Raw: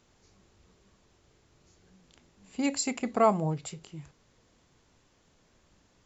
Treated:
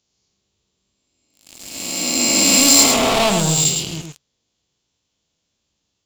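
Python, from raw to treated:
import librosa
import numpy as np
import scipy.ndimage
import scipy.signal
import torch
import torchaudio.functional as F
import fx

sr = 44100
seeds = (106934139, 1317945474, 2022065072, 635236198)

p1 = fx.spec_swells(x, sr, rise_s=2.44)
p2 = scipy.signal.sosfilt(scipy.signal.butter(2, 44.0, 'highpass', fs=sr, output='sos'), p1)
p3 = fx.leveller(p2, sr, passes=5)
p4 = fx.high_shelf_res(p3, sr, hz=2400.0, db=8.5, q=1.5)
p5 = p4 + fx.echo_single(p4, sr, ms=107, db=-5.0, dry=0)
y = p5 * 10.0 ** (-7.0 / 20.0)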